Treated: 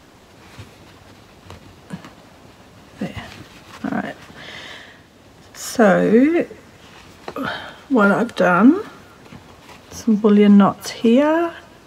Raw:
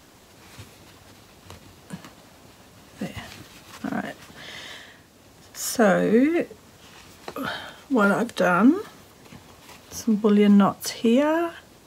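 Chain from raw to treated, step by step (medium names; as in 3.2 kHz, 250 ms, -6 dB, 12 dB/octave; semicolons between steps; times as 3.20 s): treble shelf 5.7 kHz -10.5 dB; thinning echo 188 ms, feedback 70%, high-pass 1.1 kHz, level -22 dB; trim +5.5 dB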